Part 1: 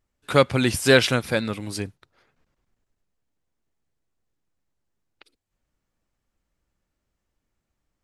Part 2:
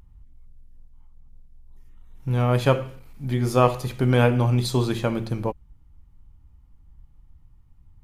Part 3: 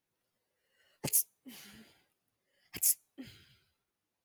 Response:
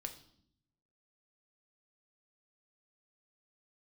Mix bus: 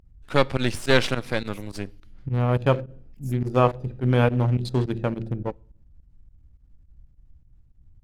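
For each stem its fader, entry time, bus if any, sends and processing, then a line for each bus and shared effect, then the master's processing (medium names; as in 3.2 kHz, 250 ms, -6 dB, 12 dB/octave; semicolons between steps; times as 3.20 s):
-2.0 dB, 0.00 s, send -11 dB, partial rectifier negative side -12 dB
-1.5 dB, 0.00 s, send -18.5 dB, local Wiener filter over 41 samples
-15.5 dB, 0.40 s, no send, peaking EQ 750 Hz -8 dB 1.8 oct; tremolo 4.8 Hz, depth 56%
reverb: on, RT60 0.65 s, pre-delay 4 ms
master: volume shaper 105 bpm, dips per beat 2, -19 dB, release 63 ms; treble shelf 8.3 kHz -9.5 dB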